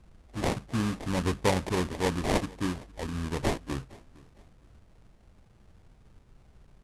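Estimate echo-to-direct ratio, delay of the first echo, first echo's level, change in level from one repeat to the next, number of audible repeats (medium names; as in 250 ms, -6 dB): -22.5 dB, 460 ms, -23.0 dB, -10.0 dB, 2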